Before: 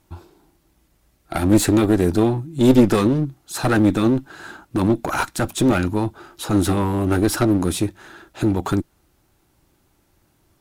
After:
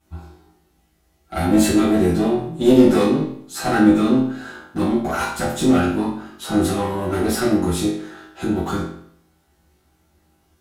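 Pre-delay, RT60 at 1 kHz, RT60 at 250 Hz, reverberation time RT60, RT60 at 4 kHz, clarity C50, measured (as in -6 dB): 5 ms, 0.65 s, 0.65 s, 0.65 s, 0.55 s, 3.0 dB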